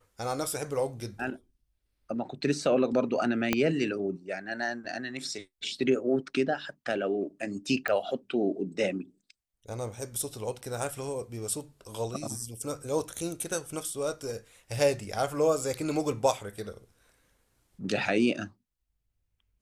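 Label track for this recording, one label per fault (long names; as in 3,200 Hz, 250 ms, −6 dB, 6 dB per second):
3.530000	3.530000	click −9 dBFS
7.880000	7.880000	click −16 dBFS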